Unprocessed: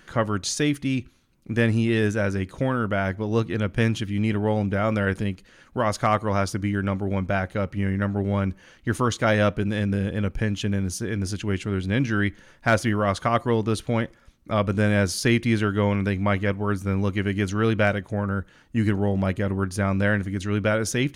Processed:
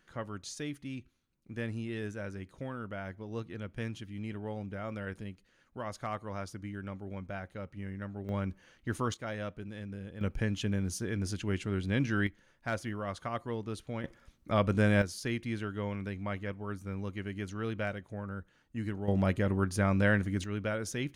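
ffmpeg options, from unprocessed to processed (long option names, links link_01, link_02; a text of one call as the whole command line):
ffmpeg -i in.wav -af "asetnsamples=nb_out_samples=441:pad=0,asendcmd='8.29 volume volume -10dB;9.14 volume volume -18dB;10.21 volume volume -7dB;12.27 volume volume -14.5dB;14.04 volume volume -5dB;15.02 volume volume -14dB;19.08 volume volume -4.5dB;20.44 volume volume -11.5dB',volume=-16dB" out.wav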